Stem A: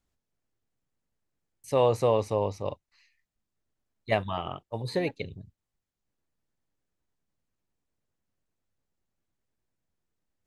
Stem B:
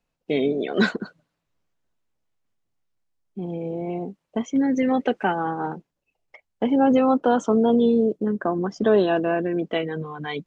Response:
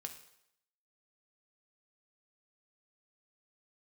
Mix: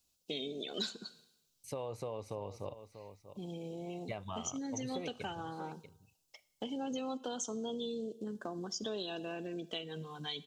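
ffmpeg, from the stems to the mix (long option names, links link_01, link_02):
-filter_complex "[0:a]highpass=48,bandreject=frequency=1800:width=5.8,alimiter=limit=-18dB:level=0:latency=1:release=171,volume=-5.5dB,asplit=3[link_01][link_02][link_03];[link_02]volume=-16dB[link_04];[link_03]volume=-16dB[link_05];[1:a]aexciter=amount=10.8:drive=6.9:freq=3100,volume=-15dB,asplit=2[link_06][link_07];[link_07]volume=-4dB[link_08];[2:a]atrim=start_sample=2205[link_09];[link_04][link_08]amix=inputs=2:normalize=0[link_10];[link_10][link_09]afir=irnorm=-1:irlink=0[link_11];[link_05]aecho=0:1:639:1[link_12];[link_01][link_06][link_11][link_12]amix=inputs=4:normalize=0,acompressor=threshold=-39dB:ratio=3"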